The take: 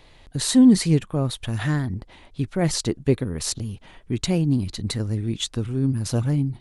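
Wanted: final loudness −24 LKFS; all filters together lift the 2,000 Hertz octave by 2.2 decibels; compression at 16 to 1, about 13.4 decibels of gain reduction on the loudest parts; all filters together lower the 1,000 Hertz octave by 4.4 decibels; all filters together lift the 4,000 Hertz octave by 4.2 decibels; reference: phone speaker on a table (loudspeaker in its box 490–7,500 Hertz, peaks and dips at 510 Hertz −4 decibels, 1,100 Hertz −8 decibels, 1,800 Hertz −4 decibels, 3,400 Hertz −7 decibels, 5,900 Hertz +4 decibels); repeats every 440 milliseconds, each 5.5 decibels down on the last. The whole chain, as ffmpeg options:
ffmpeg -i in.wav -af "equalizer=frequency=1000:width_type=o:gain=-4.5,equalizer=frequency=2000:width_type=o:gain=6,equalizer=frequency=4000:width_type=o:gain=6,acompressor=threshold=-23dB:ratio=16,highpass=frequency=490:width=0.5412,highpass=frequency=490:width=1.3066,equalizer=frequency=510:width_type=q:width=4:gain=-4,equalizer=frequency=1100:width_type=q:width=4:gain=-8,equalizer=frequency=1800:width_type=q:width=4:gain=-4,equalizer=frequency=3400:width_type=q:width=4:gain=-7,equalizer=frequency=5900:width_type=q:width=4:gain=4,lowpass=frequency=7500:width=0.5412,lowpass=frequency=7500:width=1.3066,aecho=1:1:440|880|1320|1760|2200|2640|3080:0.531|0.281|0.149|0.079|0.0419|0.0222|0.0118,volume=9dB" out.wav

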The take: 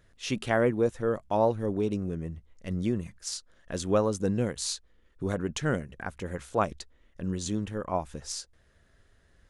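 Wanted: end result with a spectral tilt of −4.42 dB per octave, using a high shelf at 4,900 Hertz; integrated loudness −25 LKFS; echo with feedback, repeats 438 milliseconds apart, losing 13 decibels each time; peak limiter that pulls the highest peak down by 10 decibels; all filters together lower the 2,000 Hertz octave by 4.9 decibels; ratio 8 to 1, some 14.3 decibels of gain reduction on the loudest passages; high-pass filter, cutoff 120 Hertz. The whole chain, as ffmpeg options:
ffmpeg -i in.wav -af "highpass=120,equalizer=frequency=2000:width_type=o:gain=-7.5,highshelf=frequency=4900:gain=4.5,acompressor=threshold=-35dB:ratio=8,alimiter=level_in=7dB:limit=-24dB:level=0:latency=1,volume=-7dB,aecho=1:1:438|876|1314:0.224|0.0493|0.0108,volume=17.5dB" out.wav

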